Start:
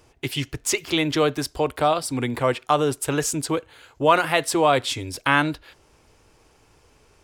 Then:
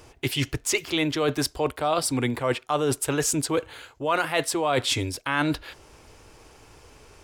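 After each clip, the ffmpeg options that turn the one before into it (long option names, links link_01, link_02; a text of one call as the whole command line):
ffmpeg -i in.wav -af "equalizer=frequency=180:width_type=o:width=0.77:gain=-2.5,areverse,acompressor=threshold=-28dB:ratio=6,areverse,volume=6.5dB" out.wav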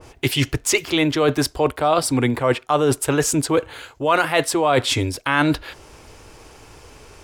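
ffmpeg -i in.wav -af "adynamicequalizer=threshold=0.01:dfrequency=2200:dqfactor=0.7:tfrequency=2200:tqfactor=0.7:attack=5:release=100:ratio=0.375:range=2:mode=cutabove:tftype=highshelf,volume=6.5dB" out.wav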